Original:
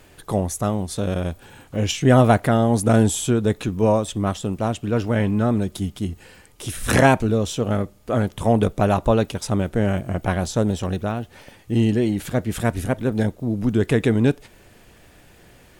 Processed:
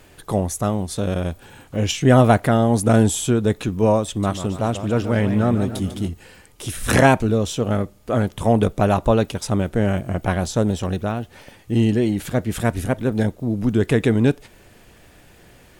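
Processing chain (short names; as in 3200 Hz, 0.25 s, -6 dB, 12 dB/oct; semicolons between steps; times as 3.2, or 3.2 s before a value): 4.08–6.09 warbling echo 0.143 s, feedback 55%, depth 162 cents, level -10.5 dB; gain +1 dB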